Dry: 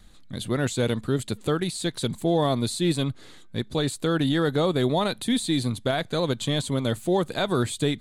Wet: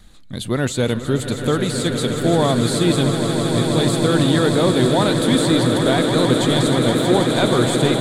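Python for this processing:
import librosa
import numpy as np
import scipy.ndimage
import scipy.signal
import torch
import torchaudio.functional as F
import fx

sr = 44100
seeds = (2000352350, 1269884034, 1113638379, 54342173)

y = fx.echo_swell(x, sr, ms=160, loudest=8, wet_db=-10.0)
y = F.gain(torch.from_numpy(y), 5.0).numpy()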